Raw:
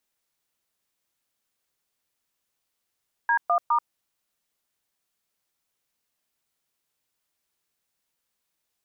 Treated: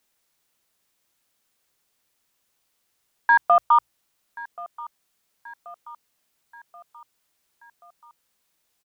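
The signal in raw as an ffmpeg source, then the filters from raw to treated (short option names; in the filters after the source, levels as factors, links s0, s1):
-f lavfi -i "aevalsrc='0.0891*clip(min(mod(t,0.206),0.085-mod(t,0.206))/0.002,0,1)*(eq(floor(t/0.206),0)*(sin(2*PI*941*mod(t,0.206))+sin(2*PI*1633*mod(t,0.206)))+eq(floor(t/0.206),1)*(sin(2*PI*697*mod(t,0.206))+sin(2*PI*1209*mod(t,0.206)))+eq(floor(t/0.206),2)*(sin(2*PI*941*mod(t,0.206))+sin(2*PI*1209*mod(t,0.206))))':d=0.618:s=44100"
-af "bandreject=f=60:t=h:w=6,bandreject=f=120:t=h:w=6,acontrast=85,aecho=1:1:1081|2162|3243|4324:0.1|0.055|0.0303|0.0166"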